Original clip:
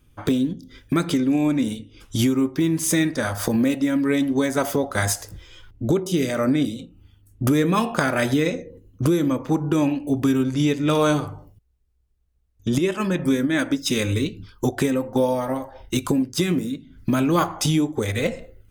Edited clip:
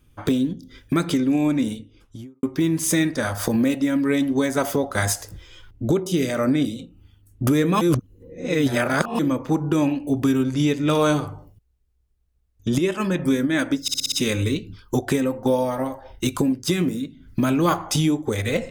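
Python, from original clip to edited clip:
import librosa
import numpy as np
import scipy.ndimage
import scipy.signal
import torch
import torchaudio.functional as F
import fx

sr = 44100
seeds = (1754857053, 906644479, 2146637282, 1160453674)

y = fx.studio_fade_out(x, sr, start_s=1.58, length_s=0.85)
y = fx.edit(y, sr, fx.reverse_span(start_s=7.81, length_s=1.38),
    fx.stutter(start_s=13.82, slice_s=0.06, count=6), tone=tone)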